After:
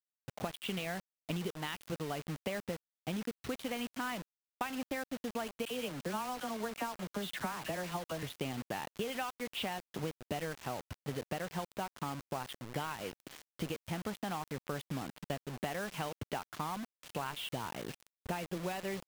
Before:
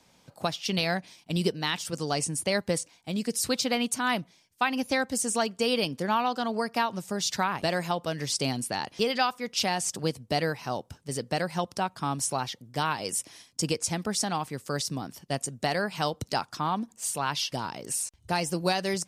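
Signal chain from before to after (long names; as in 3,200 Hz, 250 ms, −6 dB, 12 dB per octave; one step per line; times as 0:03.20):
Butterworth low-pass 3,400 Hz 48 dB per octave
downward compressor 8 to 1, threshold −39 dBFS, peak gain reduction 18 dB
0:05.65–0:08.23: all-pass dispersion lows, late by 59 ms, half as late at 1,400 Hz
bit reduction 8 bits
level +3.5 dB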